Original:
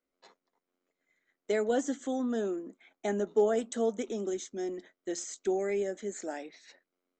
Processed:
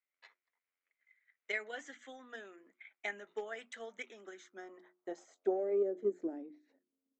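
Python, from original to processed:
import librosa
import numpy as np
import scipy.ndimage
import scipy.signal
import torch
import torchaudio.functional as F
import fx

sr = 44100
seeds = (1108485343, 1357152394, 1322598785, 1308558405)

y = fx.hum_notches(x, sr, base_hz=60, count=6)
y = fx.filter_sweep_bandpass(y, sr, from_hz=2100.0, to_hz=260.0, start_s=4.04, end_s=6.47, q=2.9)
y = fx.transient(y, sr, attack_db=8, sustain_db=3)
y = y * 10.0 ** (1.0 / 20.0)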